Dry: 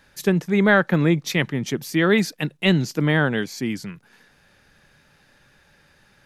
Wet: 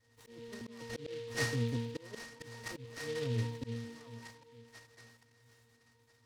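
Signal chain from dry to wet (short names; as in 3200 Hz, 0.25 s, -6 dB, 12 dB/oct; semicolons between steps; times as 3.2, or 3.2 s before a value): minimum comb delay 2.6 ms; treble ducked by the level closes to 1000 Hz, closed at -19 dBFS; octave resonator A#, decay 0.62 s; on a send: analogue delay 0.452 s, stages 2048, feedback 40%, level -20.5 dB; on the sum: auto swell 0.29 s; delay with a stepping band-pass 0.797 s, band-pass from 1000 Hz, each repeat 1.4 oct, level -3.5 dB; noise-modulated delay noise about 3000 Hz, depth 0.072 ms; gain +11.5 dB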